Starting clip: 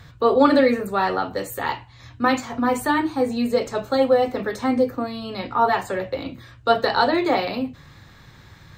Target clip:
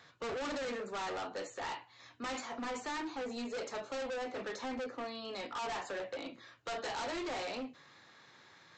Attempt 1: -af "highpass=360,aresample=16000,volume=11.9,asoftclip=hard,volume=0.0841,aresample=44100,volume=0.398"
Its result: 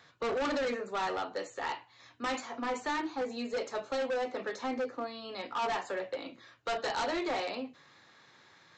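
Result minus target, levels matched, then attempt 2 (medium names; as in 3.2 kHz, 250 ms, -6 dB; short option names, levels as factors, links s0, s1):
overload inside the chain: distortion -4 dB
-af "highpass=360,aresample=16000,volume=28.2,asoftclip=hard,volume=0.0355,aresample=44100,volume=0.398"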